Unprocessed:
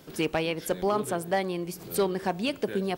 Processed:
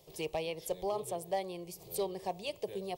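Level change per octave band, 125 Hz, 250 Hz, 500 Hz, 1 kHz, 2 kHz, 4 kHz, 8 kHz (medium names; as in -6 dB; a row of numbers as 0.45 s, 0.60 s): -13.0 dB, -14.0 dB, -8.0 dB, -8.0 dB, -13.0 dB, -8.5 dB, -6.5 dB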